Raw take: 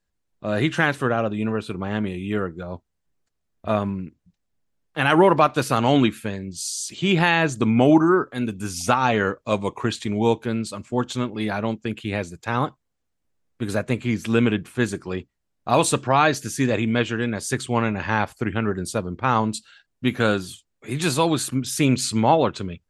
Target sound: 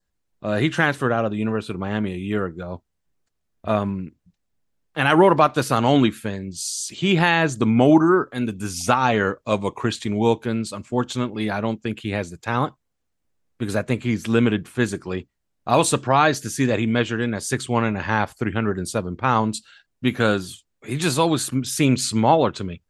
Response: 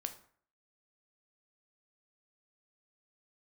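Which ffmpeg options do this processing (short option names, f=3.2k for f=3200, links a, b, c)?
-af "adynamicequalizer=threshold=0.00631:dfrequency=2500:dqfactor=4.7:tfrequency=2500:tqfactor=4.7:attack=5:release=100:ratio=0.375:range=2:mode=cutabove:tftype=bell,volume=1dB"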